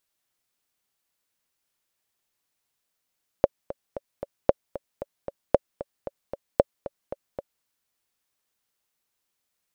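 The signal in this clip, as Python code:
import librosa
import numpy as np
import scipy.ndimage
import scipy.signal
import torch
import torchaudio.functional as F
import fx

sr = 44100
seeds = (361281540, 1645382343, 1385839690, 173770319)

y = fx.click_track(sr, bpm=228, beats=4, bars=4, hz=561.0, accent_db=16.0, level_db=-2.5)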